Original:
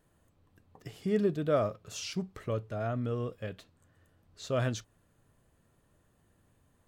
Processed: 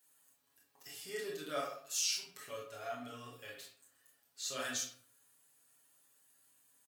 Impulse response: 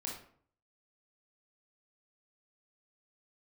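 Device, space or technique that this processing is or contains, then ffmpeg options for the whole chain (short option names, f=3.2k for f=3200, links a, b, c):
bathroom: -filter_complex "[0:a]asettb=1/sr,asplit=3[a][b][c];[a]atrim=end=1.584[d];[b]atrim=start=1.58:end=2.23,asetpts=PTS-STARTPTS,afade=t=in:d=0.004:c=qsin,afade=t=out:st=0.646:d=0.004:c=qsin,highpass=f=880:p=1[e];[c]atrim=start=2.226[f];[d][e]acrossfade=d=0.004:c1=hsin:c2=qsin[g];[g][f]acrossfade=d=0.004:c1=qsin:c2=hsin,aderivative[h];[1:a]atrim=start_sample=2205[i];[h][i]afir=irnorm=-1:irlink=0,aecho=1:1:7.2:0.91,volume=8dB"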